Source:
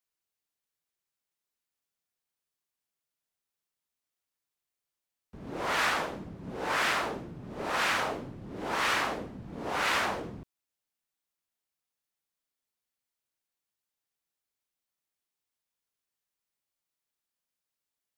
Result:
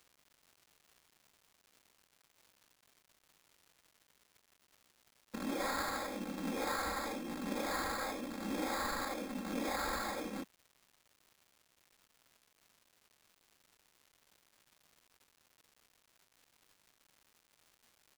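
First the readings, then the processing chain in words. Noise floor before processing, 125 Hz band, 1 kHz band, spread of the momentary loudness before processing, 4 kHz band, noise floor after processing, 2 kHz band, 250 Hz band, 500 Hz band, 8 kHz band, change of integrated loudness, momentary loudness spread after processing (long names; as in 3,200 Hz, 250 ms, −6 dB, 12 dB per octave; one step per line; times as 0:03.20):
below −85 dBFS, −8.0 dB, −7.5 dB, 15 LU, −9.5 dB, −76 dBFS, −11.0 dB, +0.5 dB, −5.0 dB, −4.0 dB, −8.0 dB, 6 LU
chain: hold until the input has moved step −43 dBFS
Butterworth high-pass 190 Hz 36 dB per octave
high-shelf EQ 8,900 Hz +9 dB
downward compressor 10 to 1, threshold −43 dBFS, peak gain reduction 19.5 dB
sample-rate reduction 2,900 Hz, jitter 0%
comb filter 3.7 ms, depth 76%
surface crackle 360 per second −59 dBFS
level +6 dB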